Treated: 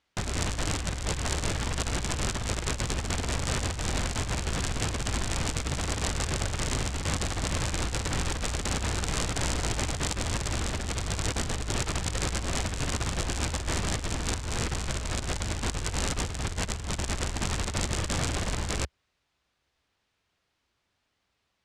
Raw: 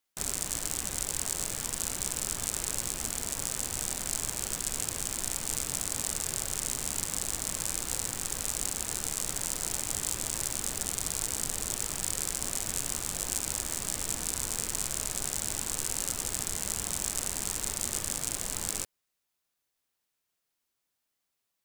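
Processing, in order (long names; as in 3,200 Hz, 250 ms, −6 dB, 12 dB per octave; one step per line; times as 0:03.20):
0:15.16–0:17.41: sub-octave generator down 2 octaves, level −4 dB
low-pass filter 3,900 Hz 12 dB per octave
parametric band 67 Hz +12 dB 1.4 octaves
compressor whose output falls as the input rises −38 dBFS, ratio −0.5
level +9 dB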